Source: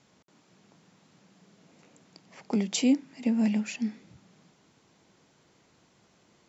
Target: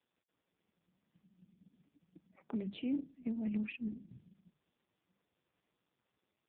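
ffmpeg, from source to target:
-af "dynaudnorm=f=120:g=13:m=8dB,afftdn=nr=30:nf=-35,areverse,acompressor=threshold=-31dB:ratio=10,areverse,bandreject=f=50:t=h:w=6,bandreject=f=100:t=h:w=6,bandreject=f=150:t=h:w=6,bandreject=f=200:t=h:w=6,volume=-2dB" -ar 8000 -c:a libopencore_amrnb -b:a 4750

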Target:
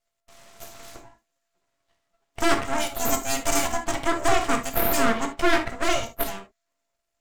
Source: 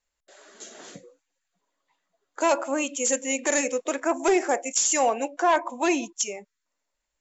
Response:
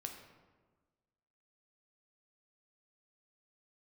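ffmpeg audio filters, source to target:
-filter_complex "[0:a]aeval=exprs='val(0)*sin(2*PI*340*n/s)':c=same,aeval=exprs='abs(val(0))':c=same[a];[1:a]atrim=start_sample=2205,atrim=end_sample=3087,asetrate=38367,aresample=44100[b];[a][b]afir=irnorm=-1:irlink=0,volume=8.5dB"

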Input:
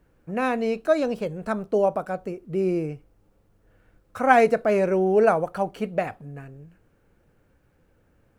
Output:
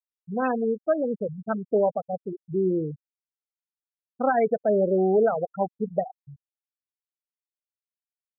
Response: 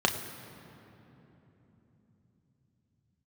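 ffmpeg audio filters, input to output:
-af "alimiter=limit=-12.5dB:level=0:latency=1:release=187,afftfilt=real='re*gte(hypot(re,im),0.158)':imag='im*gte(hypot(re,im),0.158)':win_size=1024:overlap=0.75"

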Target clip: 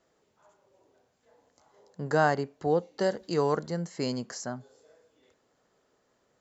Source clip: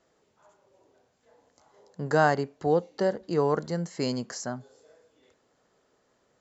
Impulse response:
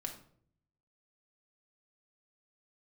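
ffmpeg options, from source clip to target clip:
-filter_complex "[0:a]asettb=1/sr,asplit=3[a][b][c];[a]atrim=end=3.004[d];[b]atrim=start=3:end=3.57,asetpts=PTS-STARTPTS,afade=t=in:d=0.004:c=qsin,afade=t=out:st=0.566:d=0.004:c=qsin,highshelf=f=2.5k:g=10[e];[c]atrim=start=3.566[f];[d][e]acrossfade=d=0.004:c1=hsin:c2=qsin[g];[g][f]acrossfade=d=0.004:c1=qsin:c2=hsin,volume=-2dB"

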